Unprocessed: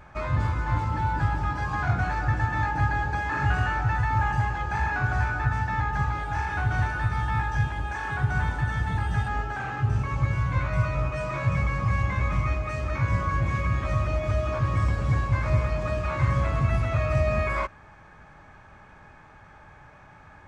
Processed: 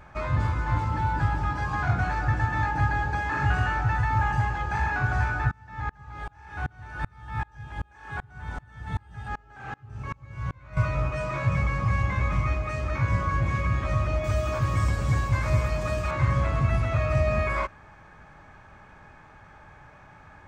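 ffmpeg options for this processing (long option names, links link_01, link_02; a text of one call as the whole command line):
ffmpeg -i in.wav -filter_complex "[0:a]asettb=1/sr,asplit=3[link_01][link_02][link_03];[link_01]atrim=end=5.514[link_04];[link_02]atrim=start=5.51:end=10.77,asetpts=PTS-STARTPTS,afade=type=in:duration=0.004:curve=qsin,afade=type=out:start_time=5.256:duration=0.004:curve=qsin,aeval=exprs='val(0)*pow(10,-32*if(lt(mod(-2.6*n/s,1),2*abs(-2.6)/1000),1-mod(-2.6*n/s,1)/(2*abs(-2.6)/1000),(mod(-2.6*n/s,1)-2*abs(-2.6)/1000)/(1-2*abs(-2.6)/1000))/20)':channel_layout=same[link_05];[link_03]atrim=start=10.766[link_06];[link_04][link_05]acrossfade=duration=0.004:curve1=hsin:curve2=qsin[link_07];[link_07][link_06]acrossfade=duration=0.004:curve1=qsin:curve2=hsin,asettb=1/sr,asplit=3[link_08][link_09][link_10];[link_08]atrim=end=14.244[link_11];[link_09]atrim=start=14.24:end=16.11,asetpts=PTS-STARTPTS,afade=type=in:duration=0.004:curve=qsin,afade=type=out:start_time=1.866:duration=0.004:curve=qsin,aemphasis=mode=production:type=50fm[link_12];[link_10]atrim=start=16.106[link_13];[link_11][link_12]acrossfade=duration=0.004:curve1=hsin:curve2=qsin[link_14];[link_14][link_13]acrossfade=duration=0.004:curve1=qsin:curve2=hsin" out.wav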